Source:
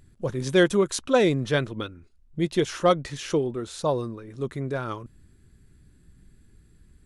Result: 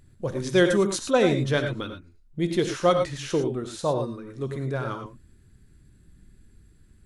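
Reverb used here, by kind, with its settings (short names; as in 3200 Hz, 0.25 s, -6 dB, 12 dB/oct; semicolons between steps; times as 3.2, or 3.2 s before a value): non-linear reverb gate 0.13 s rising, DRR 6 dB; gain -1 dB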